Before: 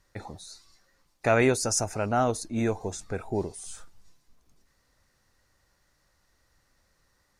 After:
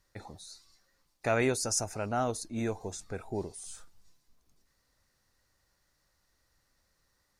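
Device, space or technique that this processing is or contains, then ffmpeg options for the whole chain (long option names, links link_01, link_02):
presence and air boost: -af "equalizer=frequency=4400:width_type=o:width=0.77:gain=2.5,highshelf=frequency=9900:gain=6.5,volume=-6dB"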